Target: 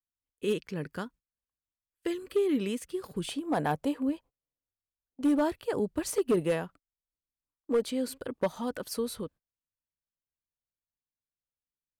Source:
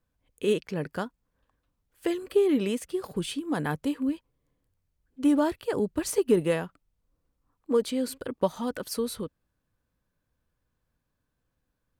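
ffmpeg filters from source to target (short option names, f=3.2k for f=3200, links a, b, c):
-af "agate=range=-24dB:threshold=-47dB:ratio=16:detection=peak,asetnsamples=n=441:p=0,asendcmd='3.29 equalizer g 10.5;5.21 equalizer g 2',equalizer=f=690:w=1.6:g=-6,volume=17dB,asoftclip=hard,volume=-17dB,volume=-3dB"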